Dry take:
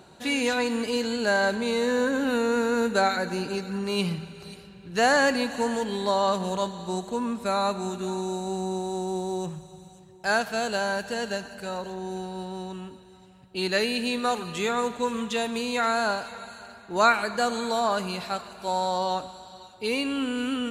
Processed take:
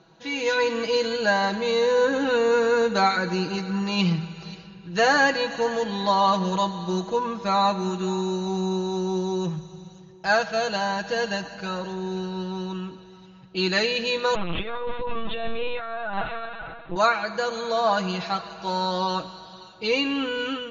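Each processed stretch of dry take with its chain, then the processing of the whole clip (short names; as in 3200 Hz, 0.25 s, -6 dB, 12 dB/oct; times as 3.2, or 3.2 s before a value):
14.35–16.96 notches 60/120/180 Hz + negative-ratio compressor -32 dBFS + LPC vocoder at 8 kHz pitch kept
whole clip: Chebyshev low-pass 6800 Hz, order 10; comb 6.1 ms, depth 80%; AGC gain up to 9 dB; gain -6 dB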